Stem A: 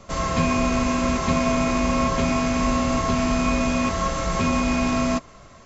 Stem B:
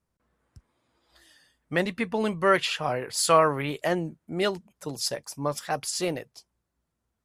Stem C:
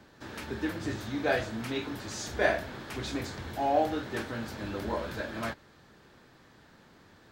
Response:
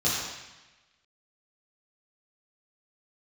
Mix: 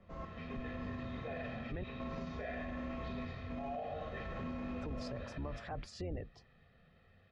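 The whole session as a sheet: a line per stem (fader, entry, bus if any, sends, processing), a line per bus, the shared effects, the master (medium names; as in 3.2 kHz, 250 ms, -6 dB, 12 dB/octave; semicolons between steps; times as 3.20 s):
-17.5 dB, 0.00 s, no bus, send -19 dB, random-step tremolo 4 Hz, depth 75%
+3.0 dB, 0.00 s, muted 1.84–4.77 s, bus A, no send, octave divider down 2 oct, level +4 dB
-15.5 dB, 0.00 s, bus A, send -9.5 dB, low-pass 3.7 kHz 12 dB/octave; resonant high shelf 1.6 kHz +10.5 dB, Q 1.5; comb 1.6 ms, depth 93%
bus A: 0.0 dB, spectral gate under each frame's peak -25 dB strong; compression 2.5:1, threshold -30 dBFS, peak gain reduction 10 dB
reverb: on, RT60 1.1 s, pre-delay 3 ms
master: tape spacing loss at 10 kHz 38 dB; peak limiter -33.5 dBFS, peak gain reduction 15 dB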